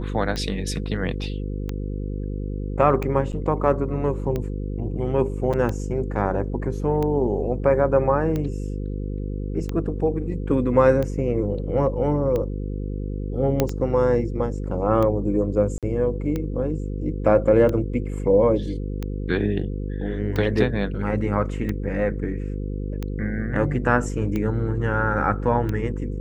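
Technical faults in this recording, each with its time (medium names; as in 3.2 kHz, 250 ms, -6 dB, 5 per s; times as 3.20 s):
buzz 50 Hz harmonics 10 -28 dBFS
tick 45 rpm -15 dBFS
3.32–3.33 s: dropout 7.6 ms
5.53–5.54 s: dropout 6.3 ms
13.60 s: pop -6 dBFS
15.78–15.83 s: dropout 47 ms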